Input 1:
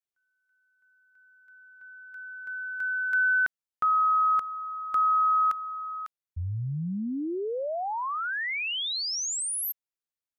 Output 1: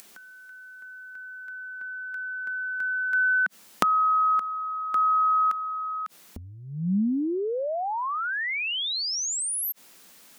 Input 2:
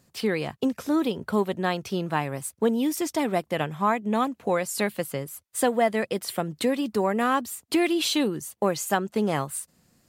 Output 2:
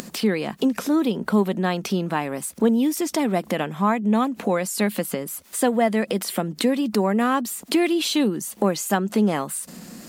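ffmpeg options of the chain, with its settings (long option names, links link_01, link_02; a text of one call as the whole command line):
ffmpeg -i in.wav -af "acompressor=mode=upward:threshold=-31dB:ratio=2.5:attack=30:release=29:knee=2.83:detection=peak,lowshelf=frequency=150:width_type=q:width=3:gain=-8.5,volume=1dB" out.wav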